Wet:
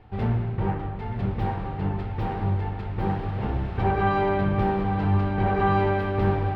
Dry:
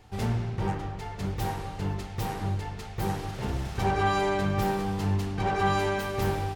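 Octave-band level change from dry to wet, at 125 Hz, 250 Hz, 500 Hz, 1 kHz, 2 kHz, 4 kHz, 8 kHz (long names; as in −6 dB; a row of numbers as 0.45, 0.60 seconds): +5.0 dB, +4.5 dB, +3.5 dB, +3.0 dB, +1.0 dB, −6.0 dB, below −20 dB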